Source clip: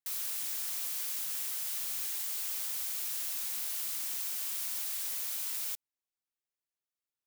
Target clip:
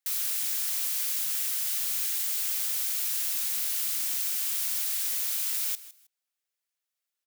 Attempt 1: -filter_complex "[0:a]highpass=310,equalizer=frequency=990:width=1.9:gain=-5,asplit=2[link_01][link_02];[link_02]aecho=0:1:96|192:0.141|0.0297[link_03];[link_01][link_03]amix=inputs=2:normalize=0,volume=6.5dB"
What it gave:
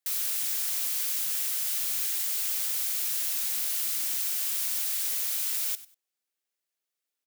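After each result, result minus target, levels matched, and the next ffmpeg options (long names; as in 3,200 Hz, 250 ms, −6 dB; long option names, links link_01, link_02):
250 Hz band +9.0 dB; echo 62 ms early
-filter_complex "[0:a]highpass=620,equalizer=frequency=990:width=1.9:gain=-5,asplit=2[link_01][link_02];[link_02]aecho=0:1:96|192:0.141|0.0297[link_03];[link_01][link_03]amix=inputs=2:normalize=0,volume=6.5dB"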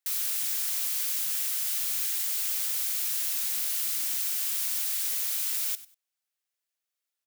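echo 62 ms early
-filter_complex "[0:a]highpass=620,equalizer=frequency=990:width=1.9:gain=-5,asplit=2[link_01][link_02];[link_02]aecho=0:1:158|316:0.141|0.0297[link_03];[link_01][link_03]amix=inputs=2:normalize=0,volume=6.5dB"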